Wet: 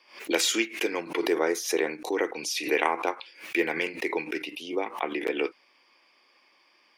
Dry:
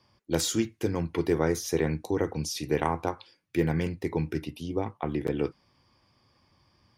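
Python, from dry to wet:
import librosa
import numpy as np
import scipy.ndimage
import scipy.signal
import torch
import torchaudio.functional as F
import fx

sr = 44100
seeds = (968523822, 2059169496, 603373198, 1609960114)

y = scipy.signal.sosfilt(scipy.signal.butter(4, 330.0, 'highpass', fs=sr, output='sos'), x)
y = fx.peak_eq(y, sr, hz=2400.0, db=fx.steps((0.0, 14.0), (1.0, 5.5), (2.13, 12.0)), octaves=0.9)
y = fx.pre_swell(y, sr, db_per_s=140.0)
y = y * 10.0 ** (1.5 / 20.0)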